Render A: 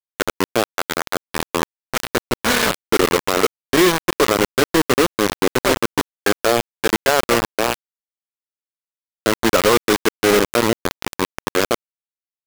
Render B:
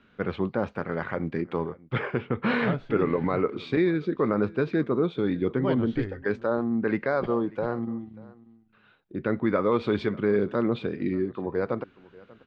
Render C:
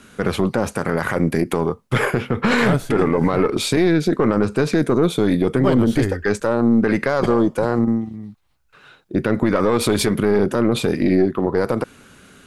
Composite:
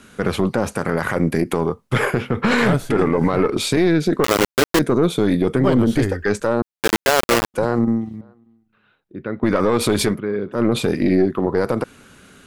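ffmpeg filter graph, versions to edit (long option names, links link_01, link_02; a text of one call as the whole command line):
ffmpeg -i take0.wav -i take1.wav -i take2.wav -filter_complex "[0:a]asplit=2[link_01][link_02];[1:a]asplit=2[link_03][link_04];[2:a]asplit=5[link_05][link_06][link_07][link_08][link_09];[link_05]atrim=end=4.242[link_10];[link_01]atrim=start=4.238:end=4.792[link_11];[link_06]atrim=start=4.788:end=6.622[link_12];[link_02]atrim=start=6.618:end=7.542[link_13];[link_07]atrim=start=7.538:end=8.212[link_14];[link_03]atrim=start=8.208:end=9.432[link_15];[link_08]atrim=start=9.428:end=10.2[link_16];[link_04]atrim=start=10.1:end=10.62[link_17];[link_09]atrim=start=10.52[link_18];[link_10][link_11]acrossfade=duration=0.004:curve1=hsin:curve2=hsin[link_19];[link_19][link_12]acrossfade=duration=0.004:curve1=hsin:curve2=hsin[link_20];[link_20][link_13]acrossfade=duration=0.004:curve1=hsin:curve2=hsin[link_21];[link_21][link_14]acrossfade=duration=0.004:curve1=hsin:curve2=hsin[link_22];[link_22][link_15]acrossfade=duration=0.004:curve1=hsin:curve2=hsin[link_23];[link_23][link_16]acrossfade=duration=0.004:curve1=hsin:curve2=hsin[link_24];[link_24][link_17]acrossfade=duration=0.1:curve1=tri:curve2=tri[link_25];[link_25][link_18]acrossfade=duration=0.1:curve1=tri:curve2=tri" out.wav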